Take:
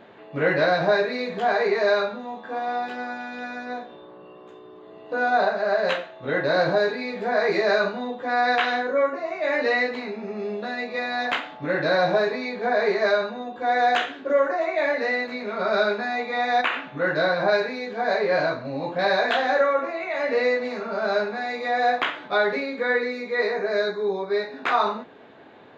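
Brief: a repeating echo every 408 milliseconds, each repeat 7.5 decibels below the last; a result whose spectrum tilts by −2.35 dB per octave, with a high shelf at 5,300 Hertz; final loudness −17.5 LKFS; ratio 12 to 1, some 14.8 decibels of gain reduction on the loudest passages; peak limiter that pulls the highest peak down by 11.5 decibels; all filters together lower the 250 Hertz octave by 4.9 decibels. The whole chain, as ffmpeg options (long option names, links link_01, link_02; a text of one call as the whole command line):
ffmpeg -i in.wav -af "equalizer=frequency=250:width_type=o:gain=-6.5,highshelf=frequency=5300:gain=-7.5,acompressor=threshold=-32dB:ratio=12,alimiter=level_in=6dB:limit=-24dB:level=0:latency=1,volume=-6dB,aecho=1:1:408|816|1224|1632|2040:0.422|0.177|0.0744|0.0312|0.0131,volume=20dB" out.wav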